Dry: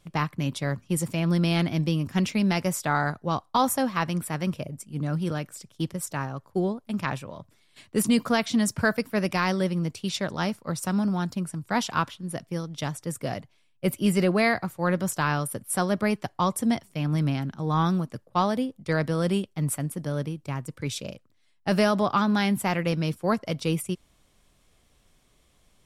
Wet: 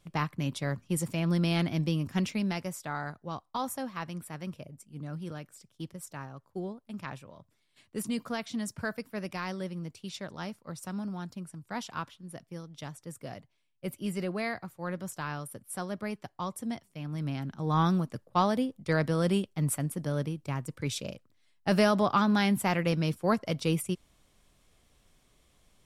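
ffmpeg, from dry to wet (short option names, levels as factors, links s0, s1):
-af "volume=1.78,afade=t=out:st=2.1:d=0.63:silence=0.446684,afade=t=in:st=17.14:d=0.65:silence=0.354813"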